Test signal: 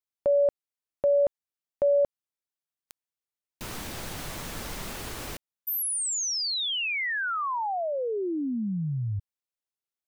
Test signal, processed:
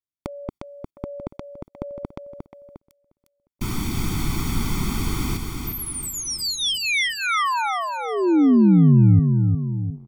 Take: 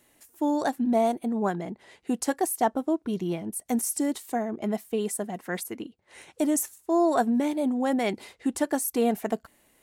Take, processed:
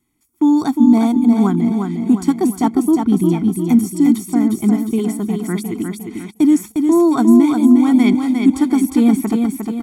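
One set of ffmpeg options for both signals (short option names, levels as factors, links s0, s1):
-filter_complex "[0:a]lowshelf=f=430:t=q:w=1.5:g=7,aecho=1:1:355|710|1065|1420|1775|2130:0.562|0.264|0.124|0.0584|0.0274|0.0129,agate=range=0.178:threshold=0.0158:ratio=16:release=112:detection=rms,aecho=1:1:0.9:0.86,acrossover=split=4400[s0][s1];[s1]acompressor=threshold=0.0224:ratio=4:attack=1:release=60[s2];[s0][s2]amix=inputs=2:normalize=0,volume=1.41"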